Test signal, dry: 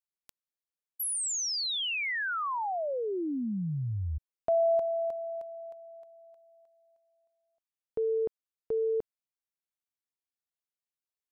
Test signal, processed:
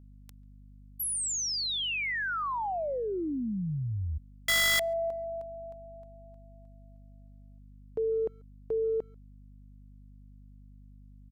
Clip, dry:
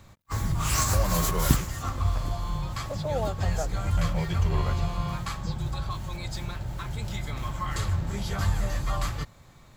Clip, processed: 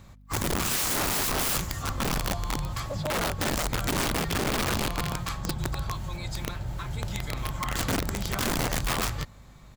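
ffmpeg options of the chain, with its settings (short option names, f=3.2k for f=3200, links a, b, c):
-filter_complex "[0:a]aeval=exprs='val(0)+0.00282*(sin(2*PI*50*n/s)+sin(2*PI*2*50*n/s)/2+sin(2*PI*3*50*n/s)/3+sin(2*PI*4*50*n/s)/4+sin(2*PI*5*50*n/s)/5)':c=same,aeval=exprs='(mod(12.6*val(0)+1,2)-1)/12.6':c=same,asplit=2[a][b];[b]adelay=140,highpass=300,lowpass=3.4k,asoftclip=type=hard:threshold=-32dB,volume=-28dB[c];[a][c]amix=inputs=2:normalize=0"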